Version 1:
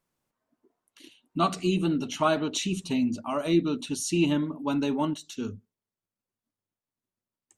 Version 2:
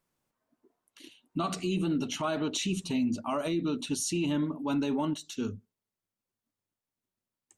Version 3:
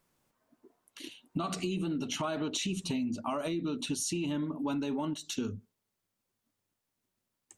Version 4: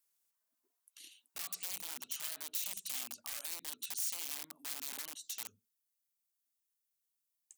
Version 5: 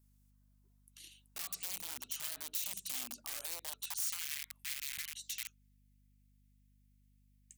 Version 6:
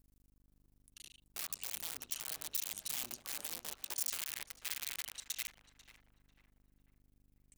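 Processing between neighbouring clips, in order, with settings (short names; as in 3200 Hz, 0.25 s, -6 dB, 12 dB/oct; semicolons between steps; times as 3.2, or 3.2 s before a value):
limiter -22 dBFS, peak gain reduction 11 dB
compressor 6:1, threshold -37 dBFS, peak gain reduction 11 dB; gain +6 dB
wrapped overs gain 28 dB; pre-emphasis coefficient 0.97; gain -2.5 dB
high-pass sweep 100 Hz -> 2100 Hz, 2.66–4.39; hum 50 Hz, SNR 24 dB
cycle switcher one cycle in 2, muted; tape echo 0.494 s, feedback 45%, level -10 dB, low-pass 1700 Hz; gain +2.5 dB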